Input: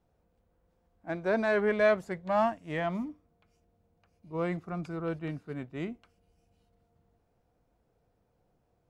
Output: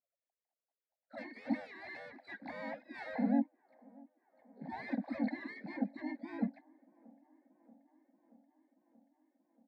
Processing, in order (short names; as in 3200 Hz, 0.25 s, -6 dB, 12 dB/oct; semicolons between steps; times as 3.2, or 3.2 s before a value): sine-wave speech; low-pass opened by the level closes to 2900 Hz, open at -30 dBFS; dynamic EQ 220 Hz, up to +5 dB, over -46 dBFS, Q 2; compressor 12:1, threshold -27 dBFS, peak gain reduction 11.5 dB; limiter -32.5 dBFS, peak gain reduction 11 dB; sample leveller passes 3; vowel filter u; fixed phaser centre 2200 Hz, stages 8; harmoniser -4 st -16 dB, -3 st -1 dB, +12 st -13 dB; band-limited delay 0.58 s, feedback 74%, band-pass 570 Hz, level -23 dB; speed mistake 48 kHz file played as 44.1 kHz; gain +11.5 dB